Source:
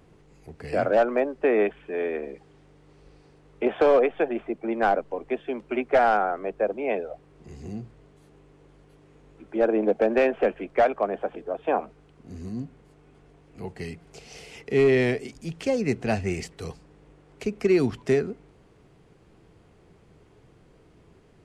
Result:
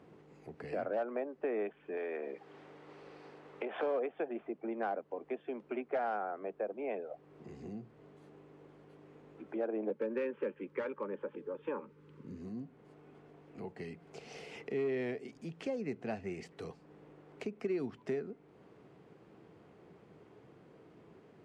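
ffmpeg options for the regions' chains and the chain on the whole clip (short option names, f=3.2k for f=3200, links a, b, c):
-filter_complex "[0:a]asettb=1/sr,asplit=3[a][b][c];[a]atrim=end=1.974[d];[b]atrim=start=1.97:end=3.83,asetpts=PTS-STARTPTS,afade=t=in:d=0.004:c=qsin,afade=t=out:st=1.856:d=0.004:c=qsin,acompressor=threshold=-29dB:ratio=4:attack=3.2:release=140:knee=1:detection=peak,asplit=2[e][f];[f]highpass=f=720:p=1,volume=14dB,asoftclip=type=tanh:threshold=-13dB[g];[e][g]amix=inputs=2:normalize=0,lowpass=f=4.9k:p=1,volume=-6dB[h];[c]atrim=start=3.826[i];[d][h]acrossfade=d=0.004:c1=hsin:c2=qsin[j];[j][i]acrossfade=d=0.004:c1=qsin:c2=hsin,asettb=1/sr,asplit=3[k][l][m];[k]atrim=end=9.904[n];[l]atrim=start=9.9:end=12.38,asetpts=PTS-STARTPTS,afade=t=in:d=0.004:c=qsin,afade=t=out:st=2.476:d=0.004:c=qsin,asuperstop=centerf=700:order=12:qfactor=2.7,equalizer=f=130:w=1.2:g=6[o];[m]atrim=start=12.376[p];[n][o]acrossfade=d=0.004:c1=hsin:c2=qsin[q];[q][p]acrossfade=d=0.004:c1=qsin:c2=hsin,lowpass=f=1.9k:p=1,acompressor=threshold=-44dB:ratio=2,highpass=170"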